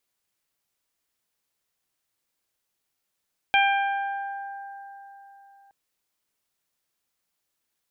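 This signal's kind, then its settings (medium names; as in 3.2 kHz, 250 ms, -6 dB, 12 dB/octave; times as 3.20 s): additive tone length 2.17 s, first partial 794 Hz, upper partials -3.5/0/-6.5 dB, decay 3.77 s, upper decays 2.96/1.09/1.00 s, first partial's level -19 dB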